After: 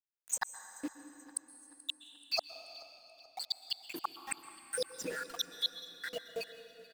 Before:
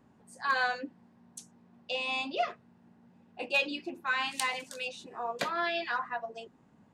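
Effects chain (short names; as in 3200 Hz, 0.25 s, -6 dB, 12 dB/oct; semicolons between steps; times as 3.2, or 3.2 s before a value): random spectral dropouts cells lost 81%; RIAA curve recording; comb 6.4 ms, depth 51%; in parallel at -0.5 dB: limiter -30 dBFS, peak gain reduction 10 dB; on the sum: flipped gate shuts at -26 dBFS, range -41 dB; sample gate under -50 dBFS; vibrato 0.34 Hz 14 cents; feedback echo 0.432 s, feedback 47%, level -20 dB; on a send at -11 dB: reverb RT60 3.6 s, pre-delay 0.113 s; on the sum: gain +7 dB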